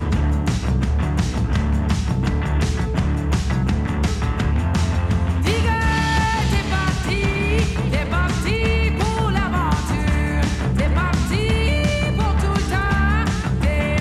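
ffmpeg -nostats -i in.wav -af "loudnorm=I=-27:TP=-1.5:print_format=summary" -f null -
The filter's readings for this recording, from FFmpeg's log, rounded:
Input Integrated:    -20.1 LUFS
Input True Peak:      -8.2 dBTP
Input LRA:             1.4 LU
Input Threshold:     -30.1 LUFS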